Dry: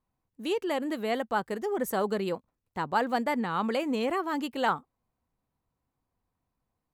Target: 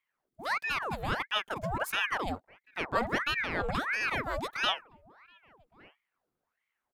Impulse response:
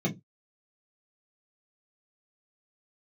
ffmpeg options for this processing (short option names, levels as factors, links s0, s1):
-filter_complex "[0:a]asplit=2[s0][s1];[s1]adelay=1166,volume=0.0501,highshelf=f=4000:g=-26.2[s2];[s0][s2]amix=inputs=2:normalize=0,aeval=exprs='val(0)*sin(2*PI*1200*n/s+1200*0.8/1.5*sin(2*PI*1.5*n/s))':c=same"